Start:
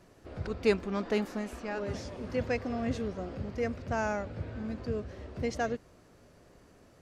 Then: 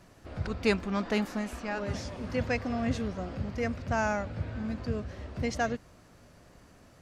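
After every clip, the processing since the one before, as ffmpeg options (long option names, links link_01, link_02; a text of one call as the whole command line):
ffmpeg -i in.wav -af "equalizer=frequency=410:width_type=o:width=0.9:gain=-6.5,volume=4dB" out.wav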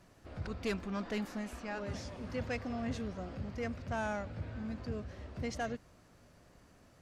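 ffmpeg -i in.wav -af "asoftclip=type=tanh:threshold=-23dB,volume=-5.5dB" out.wav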